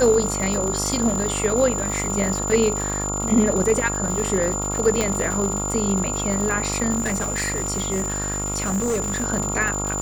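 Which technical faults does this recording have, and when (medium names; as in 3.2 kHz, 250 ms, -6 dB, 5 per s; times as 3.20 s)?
buzz 50 Hz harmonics 28 -28 dBFS
crackle 230 per s -26 dBFS
whine 7.1 kHz -26 dBFS
5.01 s: pop -7 dBFS
6.97–9.24 s: clipped -19 dBFS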